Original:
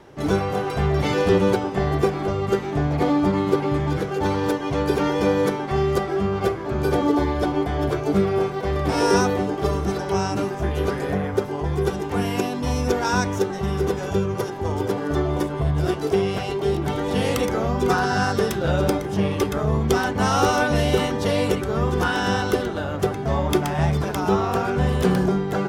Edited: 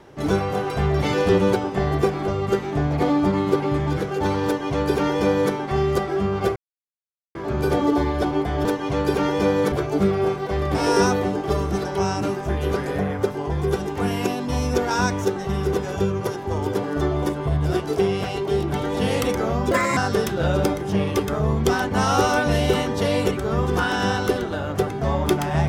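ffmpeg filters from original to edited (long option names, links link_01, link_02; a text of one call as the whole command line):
ffmpeg -i in.wav -filter_complex "[0:a]asplit=6[link_01][link_02][link_03][link_04][link_05][link_06];[link_01]atrim=end=6.56,asetpts=PTS-STARTPTS,afade=type=out:start_time=6.556:duration=0.004:curve=hsin,apad=pad_dur=0.79[link_07];[link_02]atrim=start=6.56:end=7.862,asetpts=PTS-STARTPTS,afade=type=in:duration=0.004:curve=hsin[link_08];[link_03]atrim=start=4.458:end=5.532[link_09];[link_04]atrim=start=7.858:end=17.854[link_10];[link_05]atrim=start=17.85:end=18.21,asetpts=PTS-STARTPTS,asetrate=61299,aresample=44100[link_11];[link_06]atrim=start=18.206[link_12];[link_07][link_08]concat=n=2:v=0:a=1[link_13];[link_13][link_09]acrossfade=duration=0.004:curve1=hsin:curve2=hsin[link_14];[link_14][link_10]acrossfade=duration=0.004:curve1=hsin:curve2=hsin[link_15];[link_15][link_11]acrossfade=duration=0.004:curve1=hsin:curve2=hsin[link_16];[link_16][link_12]acrossfade=duration=0.004:curve1=hsin:curve2=hsin" out.wav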